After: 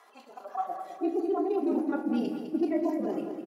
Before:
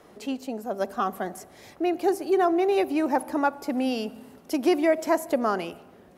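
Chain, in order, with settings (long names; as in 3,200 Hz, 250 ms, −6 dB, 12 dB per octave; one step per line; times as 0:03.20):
harmonic-percussive split with one part muted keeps harmonic
reversed playback
downward compressor 4 to 1, threshold −33 dBFS, peak gain reduction 14 dB
reversed playback
high-pass filter sweep 1,000 Hz → 280 Hz, 0:00.89–0:02.09
time stretch by overlap-add 0.56×, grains 27 ms
repeating echo 206 ms, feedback 43%, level −8.5 dB
on a send at −5 dB: convolution reverb RT60 0.80 s, pre-delay 3 ms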